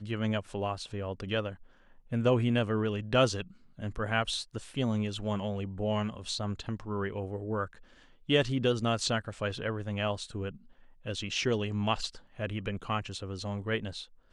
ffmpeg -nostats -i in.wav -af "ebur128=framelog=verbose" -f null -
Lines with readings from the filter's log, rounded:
Integrated loudness:
  I:         -32.3 LUFS
  Threshold: -42.7 LUFS
Loudness range:
  LRA:         3.7 LU
  Threshold: -52.4 LUFS
  LRA low:   -34.3 LUFS
  LRA high:  -30.6 LUFS